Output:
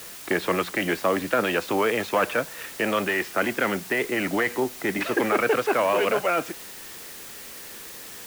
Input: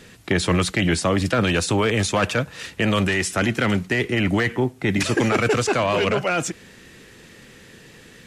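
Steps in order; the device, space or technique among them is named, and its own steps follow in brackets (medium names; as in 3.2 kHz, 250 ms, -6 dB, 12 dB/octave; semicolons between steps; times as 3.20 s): wax cylinder (band-pass 340–2200 Hz; wow and flutter; white noise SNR 15 dB)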